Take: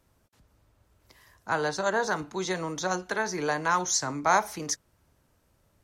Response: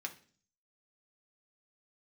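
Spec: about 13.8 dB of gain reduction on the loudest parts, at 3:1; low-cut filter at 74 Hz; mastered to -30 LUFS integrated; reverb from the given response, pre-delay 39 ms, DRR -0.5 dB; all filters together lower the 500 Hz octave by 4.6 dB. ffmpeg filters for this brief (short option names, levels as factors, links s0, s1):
-filter_complex "[0:a]highpass=74,equalizer=f=500:t=o:g=-6,acompressor=threshold=0.0126:ratio=3,asplit=2[s0][s1];[1:a]atrim=start_sample=2205,adelay=39[s2];[s1][s2]afir=irnorm=-1:irlink=0,volume=1.12[s3];[s0][s3]amix=inputs=2:normalize=0,volume=2"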